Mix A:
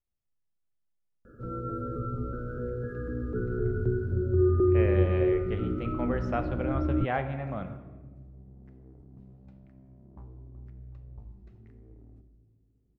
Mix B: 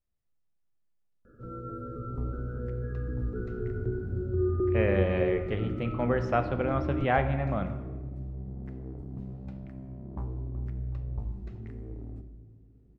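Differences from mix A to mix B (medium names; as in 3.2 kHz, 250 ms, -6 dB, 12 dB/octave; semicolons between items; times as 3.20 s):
speech +4.5 dB; first sound -4.5 dB; second sound +11.5 dB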